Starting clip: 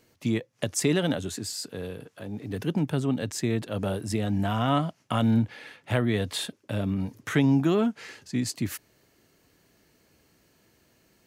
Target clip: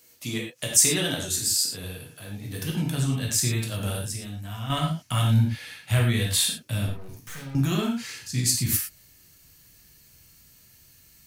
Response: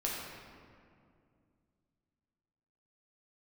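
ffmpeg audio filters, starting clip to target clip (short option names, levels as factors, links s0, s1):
-filter_complex "[0:a]asubboost=boost=8:cutoff=130,asettb=1/sr,asplit=3[s0][s1][s2];[s0]atrim=end=3.984[s3];[s1]atrim=start=3.98:end=4.7,asetpts=PTS-STARTPTS,afade=t=in:d=0.004:c=qsin,afade=t=out:st=0.716:d=0.004:c=qsin,acompressor=threshold=0.0316:ratio=3[s4];[s2]atrim=start=4.696[s5];[s3][s4]acrossfade=d=0.004:c1=hsin:c2=qsin[s6];[s6][s5]acrossfade=d=0.004:c1=qsin:c2=hsin,crystalizer=i=8:c=0,asettb=1/sr,asplit=3[s7][s8][s9];[s7]atrim=end=6.864[s10];[s8]atrim=start=6.86:end=7.55,asetpts=PTS-STARTPTS,afade=t=in:d=0.004:c=qsin,afade=t=out:st=0.686:d=0.004:c=qsin,aeval=exprs='(tanh(39.8*val(0)+0.35)-tanh(0.35))/39.8':c=same[s11];[s9]atrim=start=7.546[s12];[s10][s11]acrossfade=d=0.004:c1=hsin:c2=qsin[s13];[s13][s12]acrossfade=d=0.004:c1=qsin:c2=hsin[s14];[1:a]atrim=start_sample=2205,afade=t=out:st=0.17:d=0.01,atrim=end_sample=7938[s15];[s14][s15]afir=irnorm=-1:irlink=0,volume=0.422"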